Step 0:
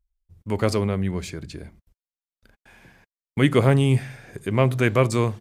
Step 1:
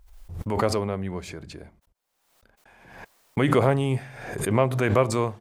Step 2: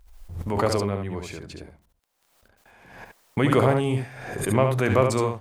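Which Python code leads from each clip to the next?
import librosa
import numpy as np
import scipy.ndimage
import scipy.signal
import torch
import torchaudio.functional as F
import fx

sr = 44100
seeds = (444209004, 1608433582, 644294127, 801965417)

y1 = fx.peak_eq(x, sr, hz=780.0, db=9.0, octaves=1.9)
y1 = fx.pre_swell(y1, sr, db_per_s=55.0)
y1 = y1 * 10.0 ** (-7.5 / 20.0)
y2 = y1 + 10.0 ** (-5.5 / 20.0) * np.pad(y1, (int(70 * sr / 1000.0), 0))[:len(y1)]
y2 = fx.dmg_crackle(y2, sr, seeds[0], per_s=11.0, level_db=-47.0)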